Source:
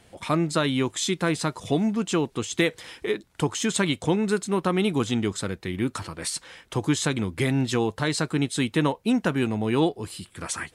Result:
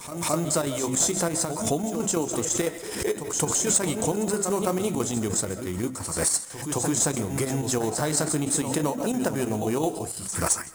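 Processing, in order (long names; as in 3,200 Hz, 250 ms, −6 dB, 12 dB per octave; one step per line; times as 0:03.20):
in parallel at −8 dB: decimation without filtering 13×
on the sum: hum removal 65.06 Hz, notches 5
on a send at −15.5 dB: convolution reverb RT60 0.35 s, pre-delay 95 ms
on the sum: flanger 0.55 Hz, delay 6.4 ms, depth 8.6 ms, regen −71%
square-wave tremolo 6 Hz, depth 60%, duty 70%
echo ahead of the sound 217 ms −12.5 dB
downward compressor, threshold −23 dBFS, peak gain reduction 5.5 dB
high shelf with overshoot 5,100 Hz +12 dB, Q 1.5
soft clipping −11 dBFS, distortion −21 dB
dynamic equaliser 650 Hz, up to +7 dB, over −45 dBFS, Q 1.3
background raised ahead of every attack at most 63 dB per second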